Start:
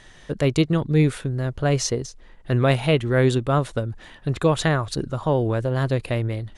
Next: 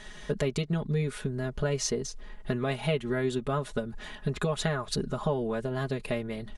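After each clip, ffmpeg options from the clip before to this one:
-af "acompressor=threshold=-28dB:ratio=5,aecho=1:1:4.8:0.86"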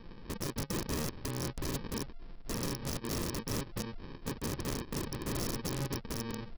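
-af "aresample=11025,acrusher=samples=16:mix=1:aa=0.000001,aresample=44100,aeval=exprs='(mod(21.1*val(0)+1,2)-1)/21.1':c=same,volume=-3.5dB"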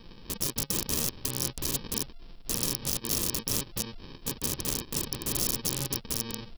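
-af "aexciter=amount=2.7:drive=6.2:freq=2.7k"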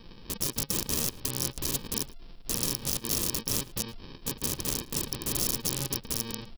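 -filter_complex "[0:a]asplit=2[a][b];[b]adelay=110.8,volume=-24dB,highshelf=f=4k:g=-2.49[c];[a][c]amix=inputs=2:normalize=0"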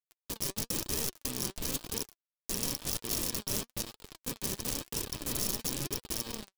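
-af "acrusher=bits=5:mix=0:aa=0.000001,flanger=delay=2:depth=3.3:regen=61:speed=1:shape=triangular"

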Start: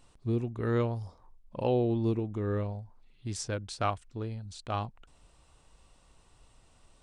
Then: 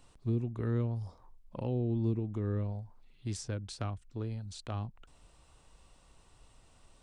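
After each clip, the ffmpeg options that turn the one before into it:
-filter_complex "[0:a]acrossover=split=280[a][b];[b]acompressor=threshold=-41dB:ratio=6[c];[a][c]amix=inputs=2:normalize=0"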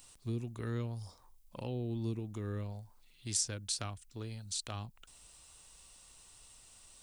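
-af "crystalizer=i=8:c=0,volume=-6dB"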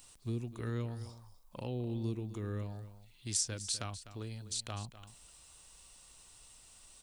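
-af "aecho=1:1:251:0.2"

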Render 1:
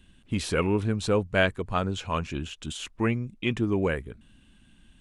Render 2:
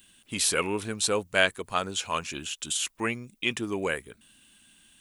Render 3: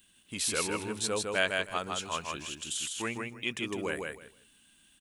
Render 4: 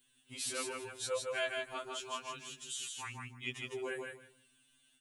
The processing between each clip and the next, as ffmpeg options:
-af "aemphasis=mode=production:type=riaa"
-af "aecho=1:1:157|314|471:0.668|0.127|0.0241,volume=-6dB"
-af "afftfilt=real='re*2.45*eq(mod(b,6),0)':imag='im*2.45*eq(mod(b,6),0)':win_size=2048:overlap=0.75,volume=-5dB"

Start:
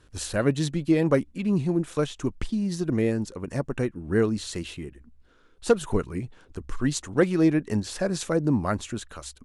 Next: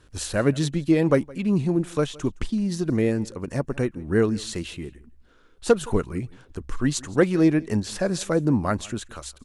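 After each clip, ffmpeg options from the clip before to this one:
-af "aecho=1:1:166:0.0708,volume=2dB"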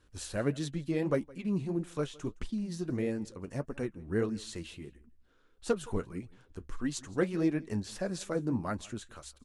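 -af "flanger=delay=3.6:depth=7.3:regen=-53:speed=1.6:shape=sinusoidal,volume=-6.5dB"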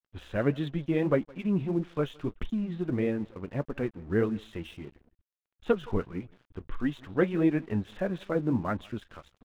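-af "aresample=8000,aresample=44100,aeval=exprs='sgn(val(0))*max(abs(val(0))-0.00133,0)':c=same,volume=4.5dB"

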